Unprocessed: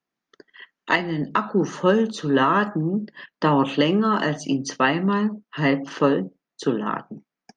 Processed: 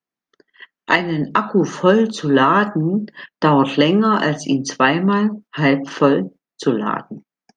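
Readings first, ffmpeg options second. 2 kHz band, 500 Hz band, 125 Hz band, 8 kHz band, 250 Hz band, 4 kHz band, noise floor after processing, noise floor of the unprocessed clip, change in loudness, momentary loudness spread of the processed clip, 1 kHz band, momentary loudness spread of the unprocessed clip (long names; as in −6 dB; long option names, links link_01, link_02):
+5.0 dB, +5.0 dB, +5.0 dB, +5.0 dB, +5.0 dB, +5.0 dB, below −85 dBFS, below −85 dBFS, +5.0 dB, 8 LU, +5.0 dB, 8 LU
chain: -af "agate=range=-10dB:threshold=-42dB:ratio=16:detection=peak,volume=5dB"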